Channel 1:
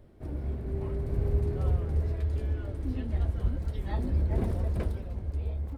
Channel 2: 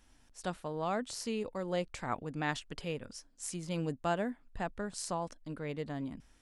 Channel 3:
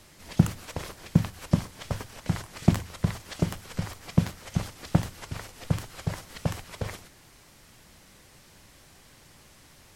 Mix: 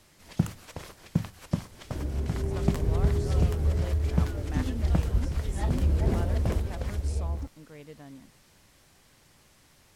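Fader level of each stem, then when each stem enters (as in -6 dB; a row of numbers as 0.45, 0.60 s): +2.5, -8.0, -5.5 dB; 1.70, 2.10, 0.00 s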